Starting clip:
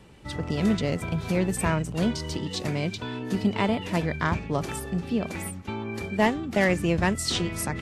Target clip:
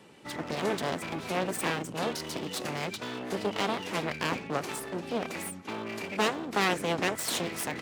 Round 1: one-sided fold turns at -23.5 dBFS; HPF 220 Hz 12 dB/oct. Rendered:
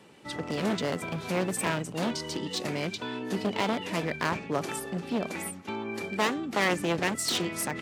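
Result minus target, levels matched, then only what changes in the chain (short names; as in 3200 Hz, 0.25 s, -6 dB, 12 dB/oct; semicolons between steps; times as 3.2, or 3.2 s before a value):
one-sided fold: distortion -12 dB
change: one-sided fold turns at -34 dBFS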